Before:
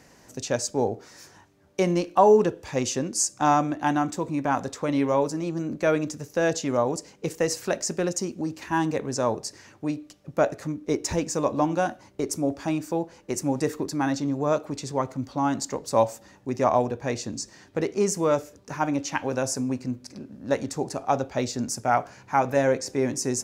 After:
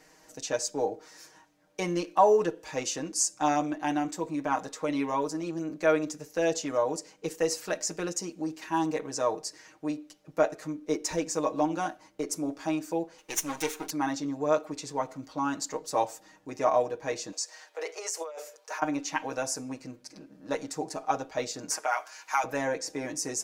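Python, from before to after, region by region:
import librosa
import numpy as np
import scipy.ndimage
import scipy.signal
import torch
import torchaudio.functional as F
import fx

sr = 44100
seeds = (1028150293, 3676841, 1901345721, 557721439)

y = fx.chain(x, sr, fx.lower_of_two(delay_ms=0.32),
    fx.tilt_shelf(db=-7.5, hz=710.0), at=(13.18, 13.9))
y = fx.chain(y, sr, fx.steep_highpass(hz=470.0, slope=36),
    fx.over_compress(threshold_db=-32.0, ratio=-1.0), at=(17.32, 18.82))
y = fx.chain(y, sr, fx.highpass(hz=920.0, slope=12),
    fx.high_shelf(hz=5100.0, db=4.0),
    fx.band_squash(depth_pct=70), at=(21.7, 22.44))
y = fx.peak_eq(y, sr, hz=110.0, db=-14.0, octaves=1.7)
y = y + 0.87 * np.pad(y, (int(6.4 * sr / 1000.0), 0))[:len(y)]
y = F.gain(torch.from_numpy(y), -5.0).numpy()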